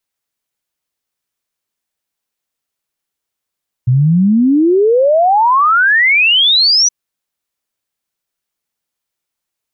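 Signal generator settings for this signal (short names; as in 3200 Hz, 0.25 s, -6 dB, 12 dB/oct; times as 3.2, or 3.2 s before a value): log sweep 120 Hz -> 6000 Hz 3.02 s -7 dBFS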